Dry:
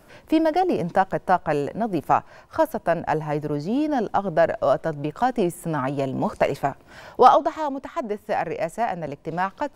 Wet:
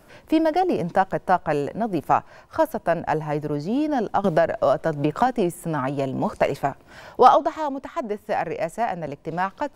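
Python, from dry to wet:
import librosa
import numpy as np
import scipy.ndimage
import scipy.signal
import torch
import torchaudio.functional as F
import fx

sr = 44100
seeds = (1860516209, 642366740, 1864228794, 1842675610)

y = fx.band_squash(x, sr, depth_pct=100, at=(4.24, 5.27))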